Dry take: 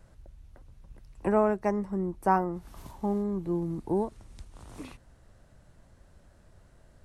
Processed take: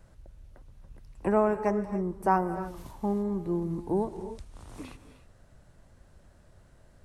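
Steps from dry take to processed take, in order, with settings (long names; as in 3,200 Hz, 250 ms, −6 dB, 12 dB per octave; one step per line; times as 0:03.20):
reverb whose tail is shaped and stops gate 320 ms rising, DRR 10.5 dB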